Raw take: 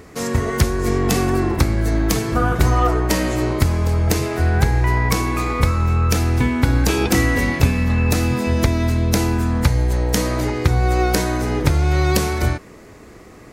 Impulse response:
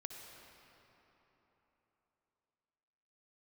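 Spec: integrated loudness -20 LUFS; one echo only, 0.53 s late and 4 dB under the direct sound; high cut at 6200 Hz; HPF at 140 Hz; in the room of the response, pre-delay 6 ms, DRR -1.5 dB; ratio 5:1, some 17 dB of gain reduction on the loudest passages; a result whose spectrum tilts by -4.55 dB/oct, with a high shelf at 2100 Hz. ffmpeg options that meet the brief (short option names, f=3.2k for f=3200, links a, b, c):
-filter_complex "[0:a]highpass=140,lowpass=6.2k,highshelf=f=2.1k:g=6.5,acompressor=threshold=-34dB:ratio=5,aecho=1:1:530:0.631,asplit=2[a][b];[1:a]atrim=start_sample=2205,adelay=6[c];[b][c]afir=irnorm=-1:irlink=0,volume=4.5dB[d];[a][d]amix=inputs=2:normalize=0,volume=10dB"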